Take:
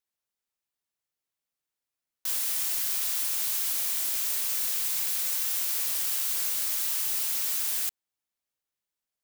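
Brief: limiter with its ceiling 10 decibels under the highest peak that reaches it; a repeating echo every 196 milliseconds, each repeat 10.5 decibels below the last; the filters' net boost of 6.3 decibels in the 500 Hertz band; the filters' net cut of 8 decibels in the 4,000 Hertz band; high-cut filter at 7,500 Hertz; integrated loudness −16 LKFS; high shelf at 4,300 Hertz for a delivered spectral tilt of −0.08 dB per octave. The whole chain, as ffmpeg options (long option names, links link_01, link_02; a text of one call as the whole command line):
ffmpeg -i in.wav -af "lowpass=7500,equalizer=frequency=500:width_type=o:gain=8,equalizer=frequency=4000:width_type=o:gain=-8,highshelf=frequency=4300:gain=-3.5,alimiter=level_in=13.5dB:limit=-24dB:level=0:latency=1,volume=-13.5dB,aecho=1:1:196|392|588:0.299|0.0896|0.0269,volume=28dB" out.wav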